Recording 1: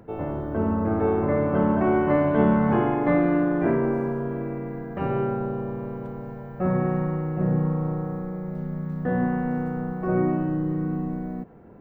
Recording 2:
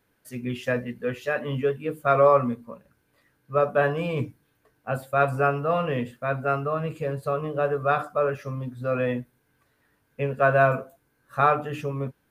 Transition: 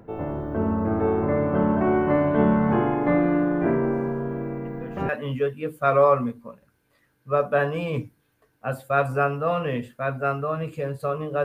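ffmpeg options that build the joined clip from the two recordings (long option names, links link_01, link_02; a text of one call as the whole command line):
ffmpeg -i cue0.wav -i cue1.wav -filter_complex "[1:a]asplit=2[link_01][link_02];[0:a]apad=whole_dur=11.44,atrim=end=11.44,atrim=end=5.092[link_03];[link_02]atrim=start=1.318:end=7.67[link_04];[link_01]atrim=start=0.88:end=1.32,asetpts=PTS-STARTPTS,volume=-14.5dB,afade=type=in:duration=0.004:curve=hsin,afade=type=out:start_time=0.436:duration=0.004:curve=hsin,adelay=205065S[link_05];[link_03][link_04]acrossfade=duration=0.004:curve1=hsin:curve2=hsin[link_06];[link_06][link_05]amix=inputs=2:normalize=0" out.wav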